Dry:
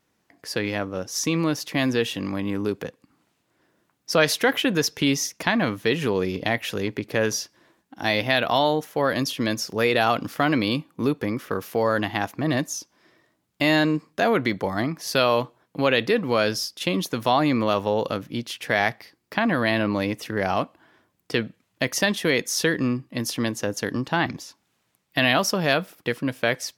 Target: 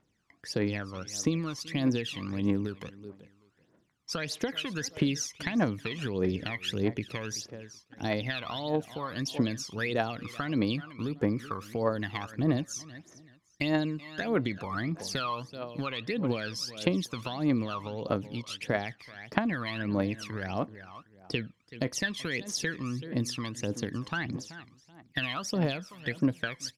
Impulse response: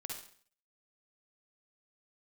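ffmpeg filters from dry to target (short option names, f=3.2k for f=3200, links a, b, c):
-af "aecho=1:1:380|760:0.126|0.0315,acompressor=threshold=-23dB:ratio=6,aphaser=in_gain=1:out_gain=1:delay=1:decay=0.73:speed=1.6:type=triangular,lowpass=8.1k,volume=-8dB"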